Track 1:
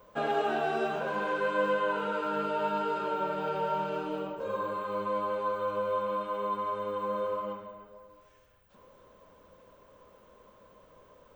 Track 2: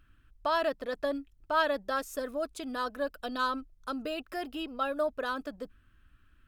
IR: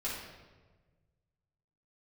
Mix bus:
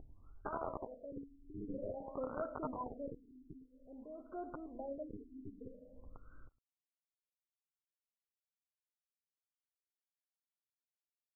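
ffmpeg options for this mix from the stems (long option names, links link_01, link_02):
-filter_complex "[0:a]acrusher=bits=3:mix=0:aa=0.000001,acompressor=threshold=-34dB:ratio=2,volume=-3.5dB[link_01];[1:a]acompressor=mode=upward:threshold=-40dB:ratio=2.5,acrossover=split=710[link_02][link_03];[link_02]aeval=exprs='val(0)*(1-0.5/2+0.5/2*cos(2*PI*2.3*n/s))':channel_layout=same[link_04];[link_03]aeval=exprs='val(0)*(1-0.5/2-0.5/2*cos(2*PI*2.3*n/s))':channel_layout=same[link_05];[link_04][link_05]amix=inputs=2:normalize=0,volume=1.5dB,afade=type=in:start_time=1.05:duration=0.31:silence=0.375837,afade=type=out:start_time=2.85:duration=0.34:silence=0.266073,afade=type=in:start_time=4.06:duration=0.2:silence=0.316228,asplit=4[link_06][link_07][link_08][link_09];[link_07]volume=-5dB[link_10];[link_08]volume=-22.5dB[link_11];[link_09]apad=whole_len=500617[link_12];[link_01][link_12]sidechaingate=range=-50dB:threshold=-57dB:ratio=16:detection=peak[link_13];[2:a]atrim=start_sample=2205[link_14];[link_10][link_14]afir=irnorm=-1:irlink=0[link_15];[link_11]aecho=0:1:110:1[link_16];[link_13][link_06][link_15][link_16]amix=inputs=4:normalize=0,acompressor=mode=upward:threshold=-46dB:ratio=2.5,afftfilt=real='re*lt(b*sr/1024,400*pow(1600/400,0.5+0.5*sin(2*PI*0.51*pts/sr)))':imag='im*lt(b*sr/1024,400*pow(1600/400,0.5+0.5*sin(2*PI*0.51*pts/sr)))':win_size=1024:overlap=0.75"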